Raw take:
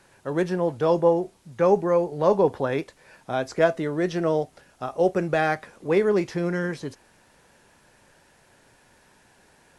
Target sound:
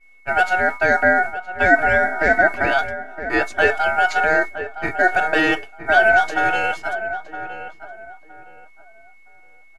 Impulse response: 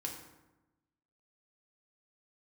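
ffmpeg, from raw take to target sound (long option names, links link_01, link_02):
-filter_complex "[0:a]aeval=exprs='val(0)+0.0141*sin(2*PI*1100*n/s)':channel_layout=same,aecho=1:1:2.6:0.75,asplit=2[link_01][link_02];[link_02]alimiter=limit=-16dB:level=0:latency=1,volume=2.5dB[link_03];[link_01][link_03]amix=inputs=2:normalize=0,agate=range=-33dB:threshold=-17dB:ratio=3:detection=peak,aeval=exprs='val(0)*sin(2*PI*1100*n/s)':channel_layout=same,asplit=2[link_04][link_05];[link_05]adelay=966,lowpass=frequency=1500:poles=1,volume=-10dB,asplit=2[link_06][link_07];[link_07]adelay=966,lowpass=frequency=1500:poles=1,volume=0.27,asplit=2[link_08][link_09];[link_09]adelay=966,lowpass=frequency=1500:poles=1,volume=0.27[link_10];[link_06][link_08][link_10]amix=inputs=3:normalize=0[link_11];[link_04][link_11]amix=inputs=2:normalize=0,volume=1dB"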